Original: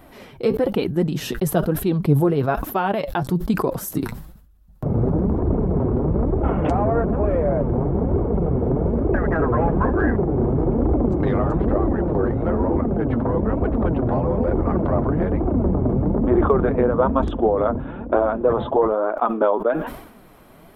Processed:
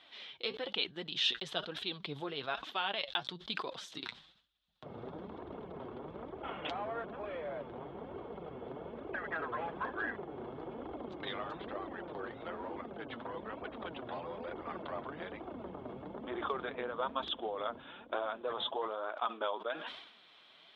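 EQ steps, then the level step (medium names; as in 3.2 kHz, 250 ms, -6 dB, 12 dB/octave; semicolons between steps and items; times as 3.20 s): band-pass filter 3.5 kHz, Q 5.1; distance through air 120 m; +11.0 dB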